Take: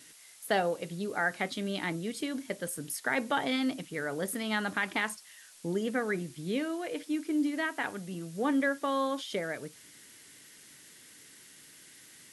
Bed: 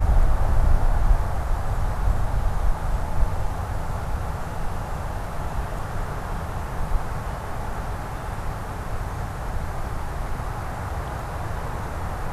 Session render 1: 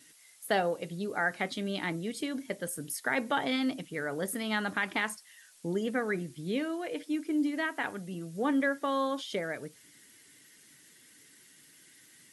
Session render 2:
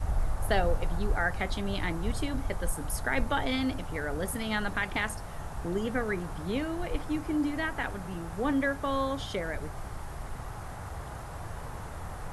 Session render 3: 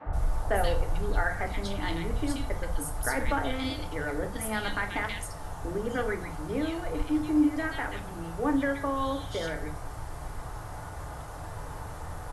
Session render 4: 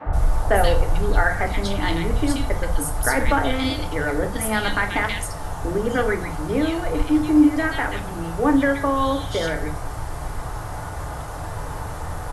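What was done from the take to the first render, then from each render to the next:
noise reduction 6 dB, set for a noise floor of -55 dBFS
add bed -10.5 dB
three bands offset in time mids, lows, highs 60/130 ms, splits 210/2300 Hz; FDN reverb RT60 0.42 s, low-frequency decay 0.75×, high-frequency decay 0.85×, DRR 4.5 dB
trim +9 dB

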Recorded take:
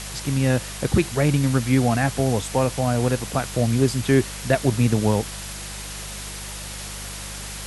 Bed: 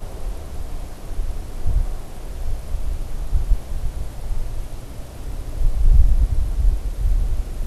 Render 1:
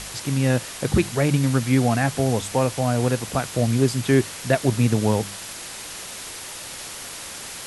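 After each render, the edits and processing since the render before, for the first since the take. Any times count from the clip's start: de-hum 50 Hz, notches 4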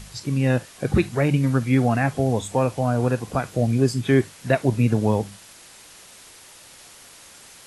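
noise print and reduce 11 dB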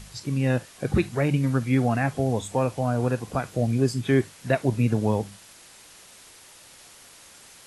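trim -3 dB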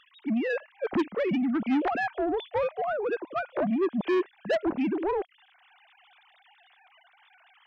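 formants replaced by sine waves; saturation -21 dBFS, distortion -8 dB

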